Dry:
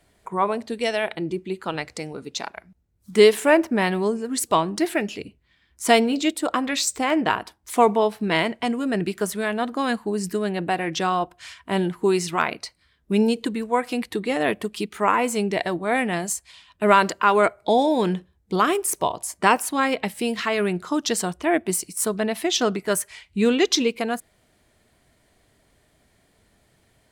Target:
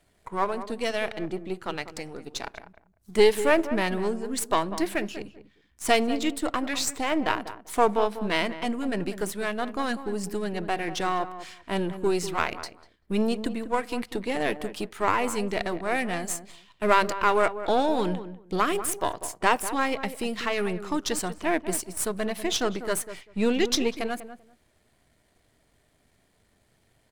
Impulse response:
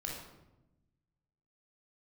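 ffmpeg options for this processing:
-filter_complex "[0:a]aeval=exprs='if(lt(val(0),0),0.447*val(0),val(0))':channel_layout=same,asplit=2[link_01][link_02];[link_02]adelay=195,lowpass=frequency=1200:poles=1,volume=-11dB,asplit=2[link_03][link_04];[link_04]adelay=195,lowpass=frequency=1200:poles=1,volume=0.18[link_05];[link_01][link_03][link_05]amix=inputs=3:normalize=0,volume=-2dB"

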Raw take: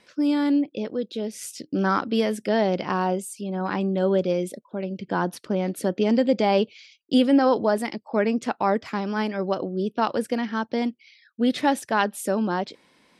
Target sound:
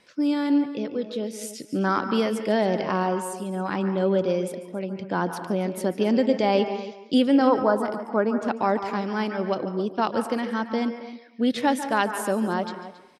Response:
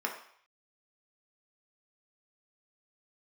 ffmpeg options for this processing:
-filter_complex "[0:a]asettb=1/sr,asplit=3[link_01][link_02][link_03];[link_01]atrim=end=7.474[link_04];[link_02]atrim=start=7.47:end=8.48,asetpts=PTS-STARTPTS,afade=type=in:duration=0.004:curve=qsin,afade=type=out:start_time=1.006:duration=0.004:curve=qsin,highshelf=frequency=1700:width_type=q:width=3:gain=-7[link_05];[link_03]atrim=start=8.476[link_06];[link_04][link_05]acrossfade=duration=0.004:curve1=hsin:curve2=qsin[link_07];[link_07][link_06]acrossfade=duration=0.004:curve1=qsin:curve2=hsin,asplit=2[link_08][link_09];[link_09]adelay=274.1,volume=-14dB,highshelf=frequency=4000:gain=-6.17[link_10];[link_08][link_10]amix=inputs=2:normalize=0,asplit=2[link_11][link_12];[1:a]atrim=start_sample=2205,adelay=144[link_13];[link_12][link_13]afir=irnorm=-1:irlink=0,volume=-14.5dB[link_14];[link_11][link_14]amix=inputs=2:normalize=0,volume=-1dB"

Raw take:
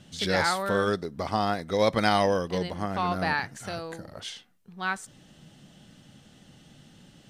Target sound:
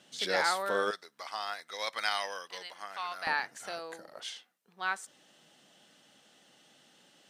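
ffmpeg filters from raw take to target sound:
ffmpeg -i in.wav -af "asetnsamples=nb_out_samples=441:pad=0,asendcmd='0.91 highpass f 1300;3.27 highpass f 460',highpass=410,volume=-3dB" out.wav

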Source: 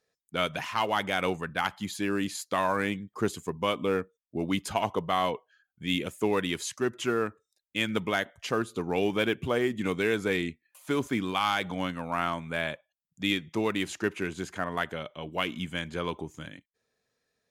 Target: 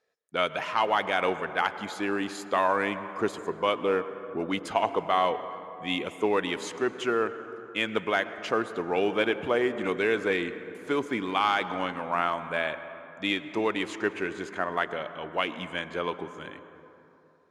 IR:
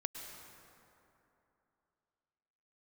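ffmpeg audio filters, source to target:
-filter_complex "[0:a]lowpass=9900,bass=frequency=250:gain=-13,treble=frequency=4000:gain=-6,asplit=2[link_01][link_02];[1:a]atrim=start_sample=2205,highshelf=frequency=3100:gain=-12[link_03];[link_02][link_03]afir=irnorm=-1:irlink=0,volume=-0.5dB[link_04];[link_01][link_04]amix=inputs=2:normalize=0,volume=-1dB"

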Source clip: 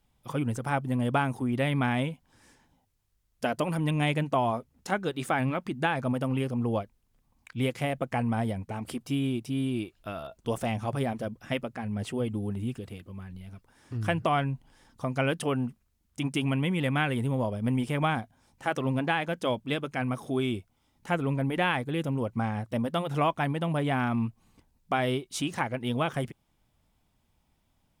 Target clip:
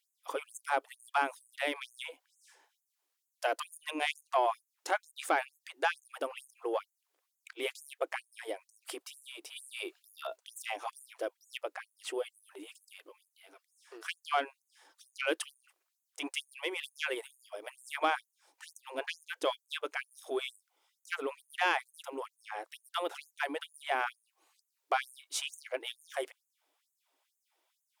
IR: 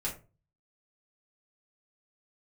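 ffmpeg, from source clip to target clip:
-filter_complex "[0:a]asoftclip=type=tanh:threshold=-16.5dB,asettb=1/sr,asplit=3[link_01][link_02][link_03];[link_01]atrim=end=9.564[link_04];[link_02]atrim=start=9.56:end=10.36,asetpts=PTS-STARTPTS,afade=type=in:duration=0.004:curve=qsin,afade=type=out:start_time=0.796:duration=0.004:curve=qsin,acontrast=38[link_05];[link_03]atrim=start=10.356[link_06];[link_04][link_05]acrossfade=duration=0.004:curve1=hsin:curve2=qsin[link_07];[link_07][link_06]acrossfade=duration=0.004:curve1=qsin:curve2=hsin,afftfilt=real='re*gte(b*sr/1024,280*pow(6400/280,0.5+0.5*sin(2*PI*2.2*pts/sr)))':imag='im*gte(b*sr/1024,280*pow(6400/280,0.5+0.5*sin(2*PI*2.2*pts/sr)))':win_size=1024:overlap=0.75"

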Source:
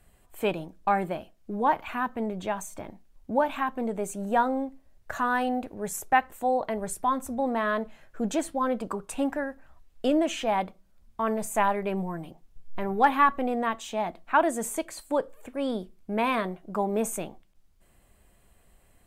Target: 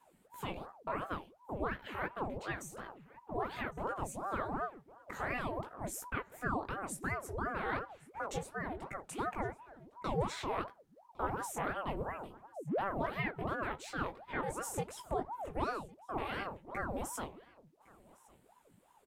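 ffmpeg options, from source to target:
ffmpeg -i in.wav -filter_complex "[0:a]alimiter=limit=-20dB:level=0:latency=1:release=209,flanger=delay=15:depth=7.3:speed=2.8,aecho=1:1:1108:0.0631,asettb=1/sr,asplit=3[link_01][link_02][link_03];[link_01]atrim=end=8.384[link_04];[link_02]atrim=start=8.38:end=8.95,asetpts=PTS-STARTPTS,afade=type=in:duration=0.004:curve=qsin,afade=type=out:start_time=0.566:duration=0.004:curve=qsin,acompressor=threshold=-39dB:ratio=1.5[link_05];[link_03]atrim=start=8.946[link_06];[link_04][link_05]acrossfade=duration=0.004:curve1=hsin:curve2=qsin[link_07];[link_07][link_06]acrossfade=duration=0.004:curve1=qsin:curve2=hsin,asettb=1/sr,asplit=3[link_08][link_09][link_10];[link_08]atrim=end=14.644[link_11];[link_09]atrim=start=14.64:end=15.64,asetpts=PTS-STARTPTS,afade=type=in:duration=0.004:curve=qsin,afade=type=out:start_time=0.996:duration=0.004:curve=qsin,lowshelf=frequency=260:gain=10[link_12];[link_10]atrim=start=15.636[link_13];[link_11][link_12]acrossfade=duration=0.004:curve1=hsin:curve2=qsin[link_14];[link_14][link_13]acrossfade=duration=0.004:curve1=qsin:curve2=hsin,aeval=exprs='val(0)*sin(2*PI*570*n/s+570*0.75/2.8*sin(2*PI*2.8*n/s))':channel_layout=same,volume=-2dB" out.wav

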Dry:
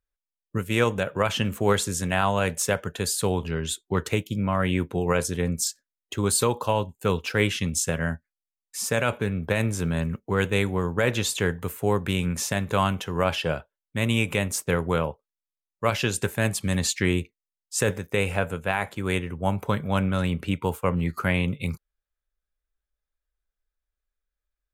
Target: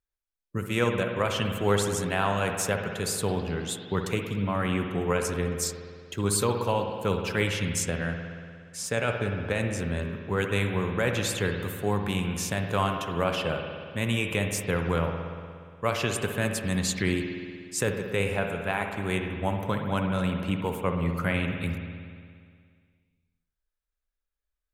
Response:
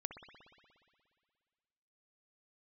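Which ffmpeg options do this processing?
-filter_complex "[0:a]asettb=1/sr,asplit=3[link_01][link_02][link_03];[link_01]atrim=end=7.834[link_04];[link_02]atrim=start=7.83:end=10.13,asetpts=PTS-STARTPTS,afade=type=in:duration=0.004:curve=qsin,afade=type=out:start_time=2.296:duration=0.004:curve=qsin,equalizer=frequency=160:width_type=o:width=0.33:gain=-5,equalizer=frequency=1000:width_type=o:width=0.33:gain=-4,equalizer=frequency=12500:width_type=o:width=0.33:gain=-11[link_05];[link_03]atrim=start=10.126[link_06];[link_04][link_05]acrossfade=duration=0.004:curve1=hsin:curve2=qsin[link_07];[link_07][link_06]acrossfade=duration=0.004:curve1=qsin:curve2=hsin[link_08];[1:a]atrim=start_sample=2205[link_09];[link_08][link_09]afir=irnorm=-1:irlink=0"

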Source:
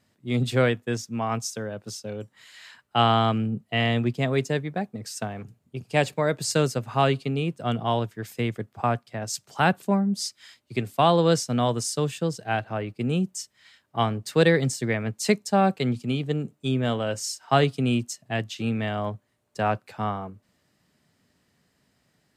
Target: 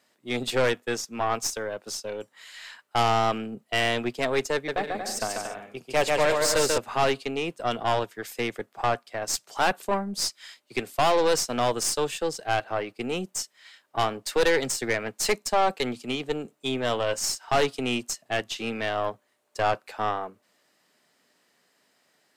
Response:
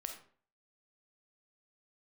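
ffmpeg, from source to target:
-filter_complex "[0:a]highpass=410,asettb=1/sr,asplit=3[link_01][link_02][link_03];[link_01]atrim=end=4.544[link_04];[link_02]atrim=start=4.54:end=6.78,asetpts=PTS-STARTPTS,afade=type=in:duration=0.004:curve=qsin,afade=type=out:start_time=2.236:duration=0.004:curve=qsin,aecho=1:1:140|231|290.2|328.6|353.6:0.631|0.398|0.251|0.158|0.1,atrim=end_sample=98784[link_05];[link_03]atrim=start=6.776[link_06];[link_04][link_05]acrossfade=duration=0.004:curve1=hsin:curve2=qsin[link_07];[link_07][link_06]acrossfade=duration=0.004:curve1=qsin:curve2=hsin,aeval=exprs='(tanh(14.1*val(0)+0.5)-tanh(0.5))/14.1':channel_layout=same,volume=6dB"

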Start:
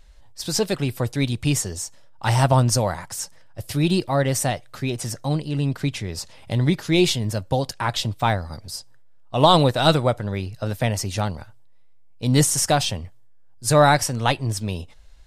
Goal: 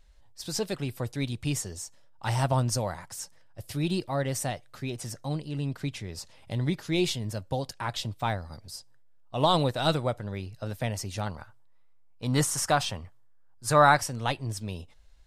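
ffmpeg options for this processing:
ffmpeg -i in.wav -filter_complex "[0:a]asettb=1/sr,asplit=3[link_01][link_02][link_03];[link_01]atrim=end=11.264[link_04];[link_02]atrim=start=11.26:end=14.01,asetpts=PTS-STARTPTS,afade=type=in:duration=0.004:curve=qsin,afade=type=out:start_time=2.746:duration=0.004:curve=qsin,equalizer=frequency=1200:width_type=o:width=1.2:gain=9.5[link_05];[link_03]atrim=start=14.006[link_06];[link_04][link_05]acrossfade=duration=0.004:curve1=hsin:curve2=qsin[link_07];[link_07][link_06]acrossfade=duration=0.004:curve1=qsin:curve2=hsin,volume=-8.5dB" out.wav

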